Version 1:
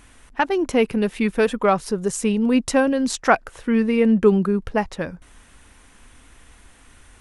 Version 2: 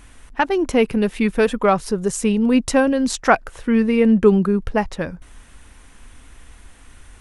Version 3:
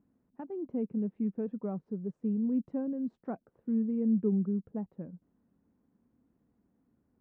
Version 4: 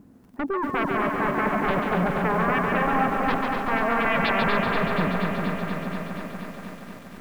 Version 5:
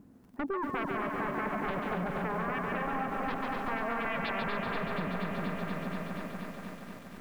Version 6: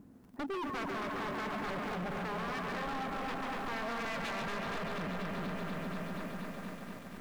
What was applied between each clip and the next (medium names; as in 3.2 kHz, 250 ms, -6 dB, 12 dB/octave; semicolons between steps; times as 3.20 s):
bass shelf 83 Hz +6.5 dB; trim +1.5 dB
ladder band-pass 230 Hz, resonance 40%; trim -5 dB
sine folder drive 19 dB, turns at -19.5 dBFS; two-band feedback delay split 640 Hz, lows 397 ms, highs 140 ms, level -4 dB; bit-crushed delay 239 ms, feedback 80%, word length 8-bit, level -5 dB; trim -3 dB
compression, threshold -25 dBFS, peak gain reduction 7 dB; trim -5 dB
hard clipper -35 dBFS, distortion -9 dB